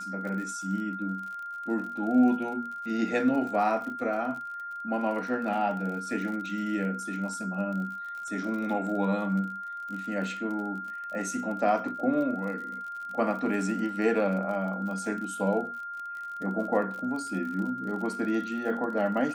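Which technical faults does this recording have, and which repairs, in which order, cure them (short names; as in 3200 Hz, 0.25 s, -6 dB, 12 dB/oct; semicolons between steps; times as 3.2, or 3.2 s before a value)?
crackle 43/s -37 dBFS
tone 1400 Hz -35 dBFS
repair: de-click; notch 1400 Hz, Q 30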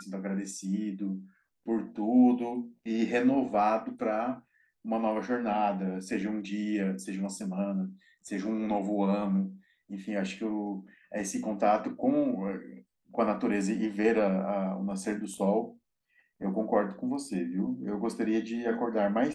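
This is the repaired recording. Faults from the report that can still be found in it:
none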